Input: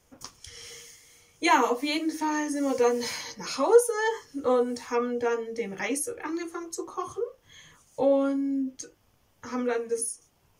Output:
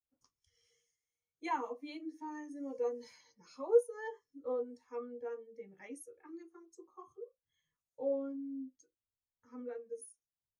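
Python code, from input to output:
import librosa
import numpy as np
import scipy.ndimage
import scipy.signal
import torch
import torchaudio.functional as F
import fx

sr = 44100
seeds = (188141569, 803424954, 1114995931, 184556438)

y = fx.spectral_expand(x, sr, expansion=1.5)
y = y * librosa.db_to_amplitude(-8.5)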